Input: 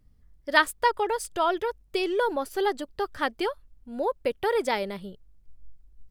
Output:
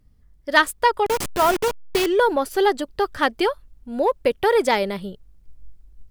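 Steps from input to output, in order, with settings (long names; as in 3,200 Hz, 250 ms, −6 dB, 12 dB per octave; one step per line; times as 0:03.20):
0:01.06–0:02.06: hold until the input has moved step −26.5 dBFS
automatic gain control gain up to 4 dB
in parallel at −6 dB: asymmetric clip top −17 dBFS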